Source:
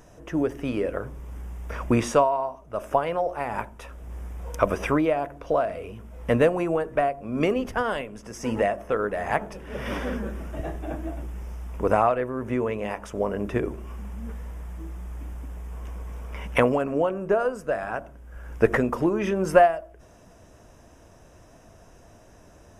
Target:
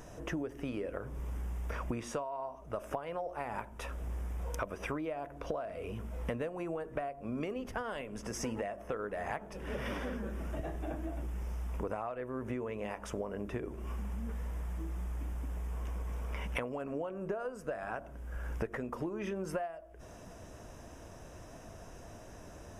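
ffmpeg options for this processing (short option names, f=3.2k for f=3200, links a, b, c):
-af "acompressor=threshold=-36dB:ratio=10,volume=1.5dB"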